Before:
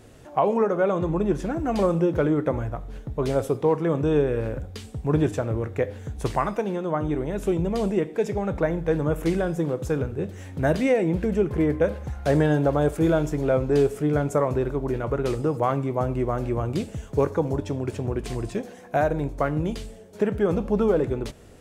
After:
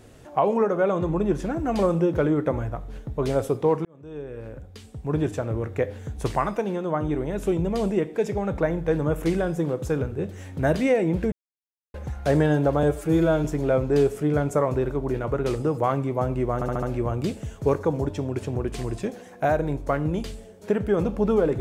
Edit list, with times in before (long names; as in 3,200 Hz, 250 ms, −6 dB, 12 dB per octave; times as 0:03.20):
0:03.85–0:05.74: fade in
0:11.32–0:11.94: silence
0:12.83–0:13.24: time-stretch 1.5×
0:16.34: stutter 0.07 s, 5 plays